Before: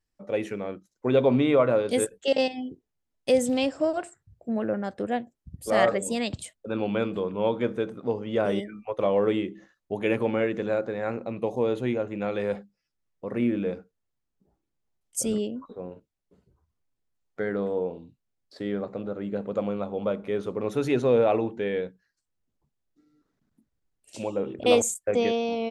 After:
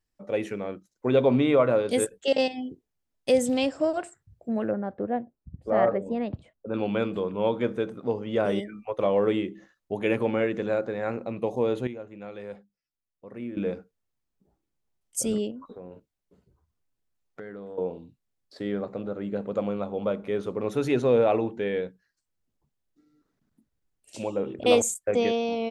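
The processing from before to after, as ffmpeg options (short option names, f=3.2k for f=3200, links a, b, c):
-filter_complex "[0:a]asettb=1/sr,asplit=3[a][b][c];[a]atrim=end=4.714[d];[b]atrim=start=4.71:end=6.74,asetpts=PTS-STARTPTS,afade=t=in:d=0.004:c=qsin,afade=t=out:st=2.026:d=0.004:c=qsin,lowpass=1.2k[e];[c]atrim=start=6.736[f];[d][e]acrossfade=d=0.004:c1=hsin:c2=qsin[g];[g][f]acrossfade=d=0.004:c1=qsin:c2=hsin,asettb=1/sr,asplit=3[h][i][j];[h]atrim=end=15.514[k];[i]atrim=start=15.51:end=17.78,asetpts=PTS-STARTPTS,afade=t=in:d=0.004:c=qsin,afade=t=out:st=2.266:d=0.004:c=qsin,acompressor=threshold=-37dB:ratio=6:attack=3.2:release=140:knee=1:detection=peak[l];[j]atrim=start=17.776[m];[k][l]acrossfade=d=0.004:c1=hsin:c2=qsin[n];[n][m]acrossfade=d=0.004:c1=qsin:c2=hsin,asplit=3[o][p][q];[o]atrim=end=11.872[r];[p]atrim=start=11.868:end=13.572,asetpts=PTS-STARTPTS,volume=-11dB[s];[q]atrim=start=13.568[t];[r][s]acrossfade=d=0.004:c1=hsin:c2=hsin[u];[u][t]acrossfade=d=0.004:c1=hsin:c2=hsin"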